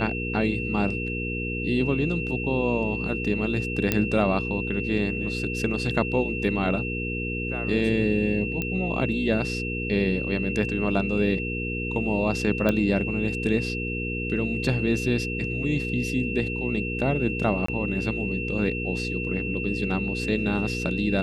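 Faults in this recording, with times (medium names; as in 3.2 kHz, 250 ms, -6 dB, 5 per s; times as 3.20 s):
hum 60 Hz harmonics 8 -31 dBFS
whine 2.7 kHz -31 dBFS
3.92 s: pop -7 dBFS
8.62 s: pop -14 dBFS
12.69 s: pop -11 dBFS
17.66–17.68 s: dropout 24 ms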